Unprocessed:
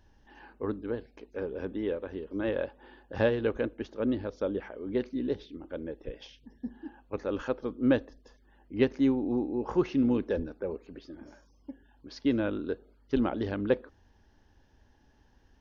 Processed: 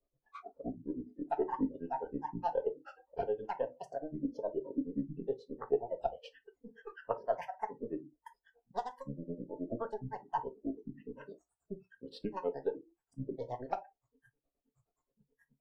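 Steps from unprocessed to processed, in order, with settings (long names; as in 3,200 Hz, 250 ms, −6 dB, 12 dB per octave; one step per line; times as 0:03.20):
gain on one half-wave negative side −3 dB
downward compressor 16 to 1, threshold −38 dBFS, peak gain reduction 19 dB
flat-topped bell 690 Hz +15 dB
granular cloud 97 ms, grains 9.5 per second, spray 37 ms, pitch spread up and down by 12 semitones
upward compression, threshold −59 dBFS
convolution reverb RT60 0.30 s, pre-delay 4 ms, DRR 4.5 dB
noise reduction from a noise print of the clip's start 24 dB
level −2 dB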